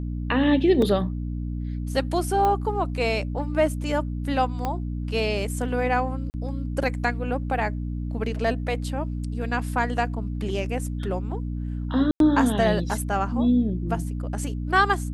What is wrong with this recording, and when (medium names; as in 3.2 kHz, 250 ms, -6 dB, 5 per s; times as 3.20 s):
hum 60 Hz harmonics 5 -29 dBFS
0.82 s: dropout 3.1 ms
2.45 s: pop -13 dBFS
4.65 s: pop -14 dBFS
6.30–6.34 s: dropout 39 ms
12.11–12.20 s: dropout 92 ms